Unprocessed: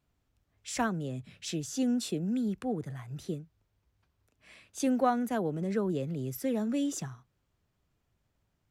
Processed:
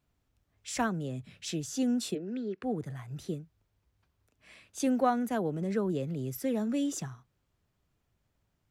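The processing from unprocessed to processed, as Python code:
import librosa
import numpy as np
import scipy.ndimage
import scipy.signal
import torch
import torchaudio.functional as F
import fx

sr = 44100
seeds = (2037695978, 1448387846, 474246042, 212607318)

y = fx.cabinet(x, sr, low_hz=330.0, low_slope=12, high_hz=4700.0, hz=(390.0, 850.0, 1800.0, 3400.0), db=(9, -9, 4, -4), at=(2.14, 2.62), fade=0.02)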